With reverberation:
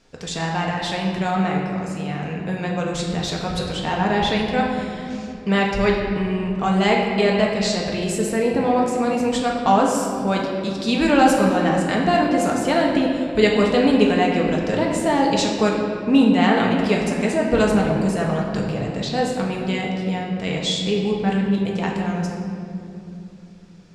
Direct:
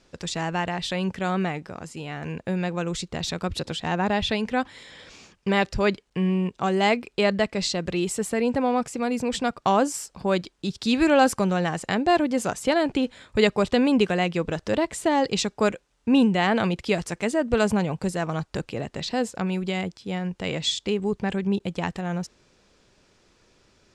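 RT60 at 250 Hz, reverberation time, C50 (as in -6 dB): 4.7 s, 2.9 s, 2.0 dB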